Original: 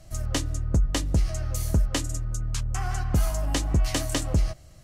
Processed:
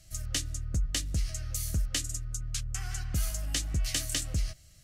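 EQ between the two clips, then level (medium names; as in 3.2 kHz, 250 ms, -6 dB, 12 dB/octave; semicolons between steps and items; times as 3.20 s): amplifier tone stack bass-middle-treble 5-5-5; peaking EQ 950 Hz -13.5 dB 0.51 oct; +6.5 dB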